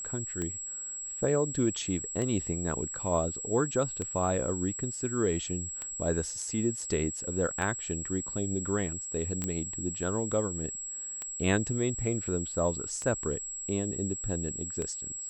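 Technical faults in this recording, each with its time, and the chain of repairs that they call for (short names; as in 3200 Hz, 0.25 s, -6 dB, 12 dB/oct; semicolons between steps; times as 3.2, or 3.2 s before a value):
tick 33 1/3 rpm -21 dBFS
tone 7700 Hz -36 dBFS
9.44 pop -17 dBFS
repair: de-click; notch 7700 Hz, Q 30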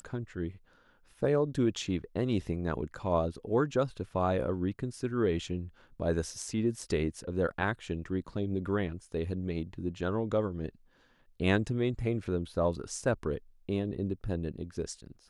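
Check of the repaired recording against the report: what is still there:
none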